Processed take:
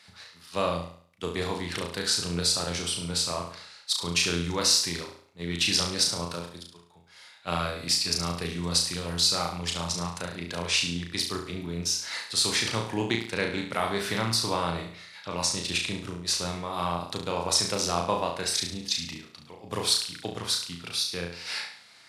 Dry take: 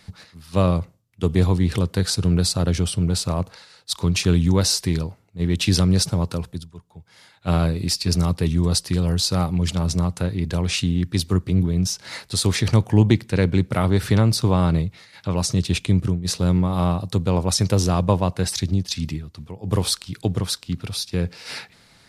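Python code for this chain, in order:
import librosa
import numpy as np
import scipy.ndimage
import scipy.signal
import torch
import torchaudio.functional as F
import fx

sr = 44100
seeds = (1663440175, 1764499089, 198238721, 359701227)

y = fx.highpass(x, sr, hz=1200.0, slope=6)
y = fx.high_shelf(y, sr, hz=11000.0, db=-11.0)
y = fx.room_flutter(y, sr, wall_m=6.0, rt60_s=0.52)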